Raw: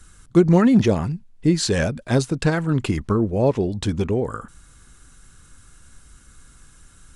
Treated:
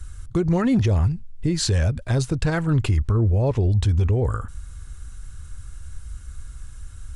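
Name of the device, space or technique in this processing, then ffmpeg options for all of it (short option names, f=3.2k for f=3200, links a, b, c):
car stereo with a boomy subwoofer: -af "lowshelf=f=130:t=q:w=1.5:g=13,alimiter=limit=-13dB:level=0:latency=1:release=100"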